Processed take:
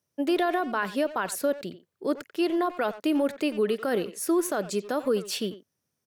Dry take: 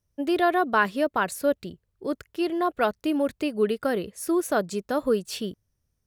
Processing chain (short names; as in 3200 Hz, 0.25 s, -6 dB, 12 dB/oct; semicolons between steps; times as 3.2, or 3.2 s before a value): Bessel high-pass 200 Hz, order 4; limiter -19.5 dBFS, peak gain reduction 10 dB; speakerphone echo 90 ms, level -12 dB; gain +2.5 dB